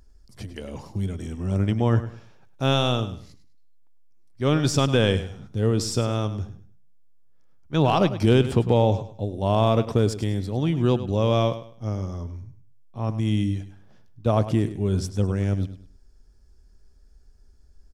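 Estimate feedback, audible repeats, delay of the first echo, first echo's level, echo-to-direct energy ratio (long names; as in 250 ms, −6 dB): 28%, 2, 102 ms, −13.0 dB, −12.5 dB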